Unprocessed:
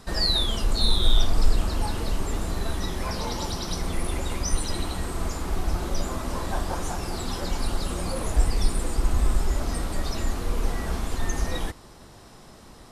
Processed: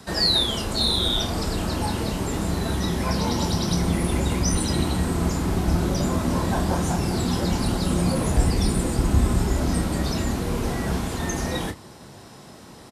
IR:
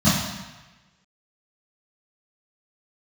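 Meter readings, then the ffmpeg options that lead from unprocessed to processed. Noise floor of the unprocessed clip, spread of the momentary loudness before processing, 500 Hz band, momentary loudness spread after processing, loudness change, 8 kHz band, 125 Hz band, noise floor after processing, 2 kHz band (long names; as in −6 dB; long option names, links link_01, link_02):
−48 dBFS, 7 LU, +5.5 dB, 5 LU, +5.0 dB, +4.0 dB, +6.5 dB, −44 dBFS, +4.0 dB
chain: -filter_complex "[0:a]highpass=110,lowshelf=frequency=220:gain=4,bandreject=frequency=1200:width=17,acrossover=split=270|530|2200[link_01][link_02][link_03][link_04];[link_01]dynaudnorm=framelen=520:gausssize=11:maxgain=8dB[link_05];[link_05][link_02][link_03][link_04]amix=inputs=4:normalize=0,asplit=2[link_06][link_07];[link_07]adelay=29,volume=-9.5dB[link_08];[link_06][link_08]amix=inputs=2:normalize=0,volume=3.5dB"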